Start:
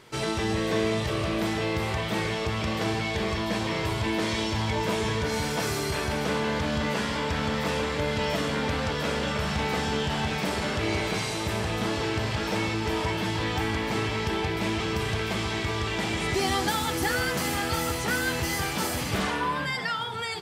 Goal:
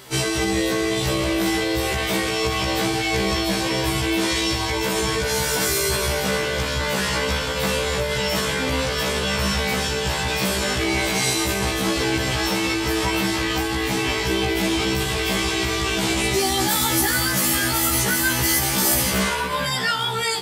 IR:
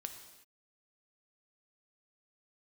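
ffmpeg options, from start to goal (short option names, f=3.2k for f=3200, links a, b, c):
-filter_complex "[0:a]alimiter=limit=-21.5dB:level=0:latency=1:release=39,aemphasis=mode=production:type=50kf,asplit=2[a][b];[1:a]atrim=start_sample=2205[c];[b][c]afir=irnorm=-1:irlink=0,volume=-11.5dB[d];[a][d]amix=inputs=2:normalize=0,afftfilt=real='re*1.73*eq(mod(b,3),0)':imag='im*1.73*eq(mod(b,3),0)':win_size=2048:overlap=0.75,volume=8dB"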